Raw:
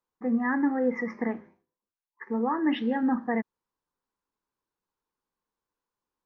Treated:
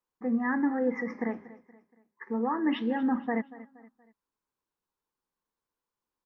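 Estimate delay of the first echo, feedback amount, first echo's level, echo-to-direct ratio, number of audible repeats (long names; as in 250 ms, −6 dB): 236 ms, 41%, −18.0 dB, −17.0 dB, 3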